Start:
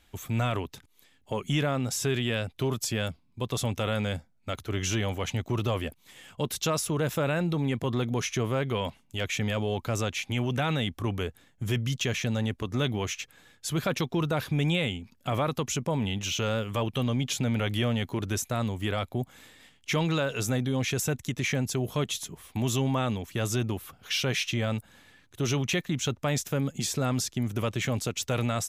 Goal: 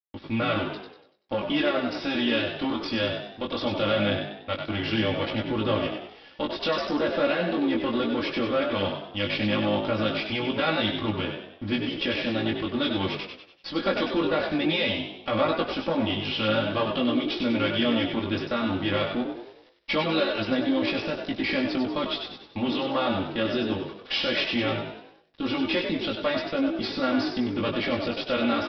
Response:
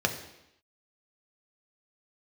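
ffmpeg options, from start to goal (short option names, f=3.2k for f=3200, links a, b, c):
-filter_complex "[0:a]aeval=exprs='if(lt(val(0),0),0.251*val(0),val(0))':c=same,highpass=f=96:p=1,agate=range=-33dB:threshold=-55dB:ratio=3:detection=peak,flanger=delay=18.5:depth=3:speed=0.19,aecho=1:1:3.6:0.98,aresample=11025,aeval=exprs='sgn(val(0))*max(abs(val(0))-0.00126,0)':c=same,aresample=44100,asplit=6[a][b][c][d][e][f];[b]adelay=96,afreqshift=53,volume=-6dB[g];[c]adelay=192,afreqshift=106,volume=-13.3dB[h];[d]adelay=288,afreqshift=159,volume=-20.7dB[i];[e]adelay=384,afreqshift=212,volume=-28dB[j];[f]adelay=480,afreqshift=265,volume=-35.3dB[k];[a][g][h][i][j][k]amix=inputs=6:normalize=0,asplit=2[l][m];[1:a]atrim=start_sample=2205,afade=t=out:st=0.44:d=0.01,atrim=end_sample=19845,adelay=63[n];[m][n]afir=irnorm=-1:irlink=0,volume=-27dB[o];[l][o]amix=inputs=2:normalize=0,volume=6.5dB"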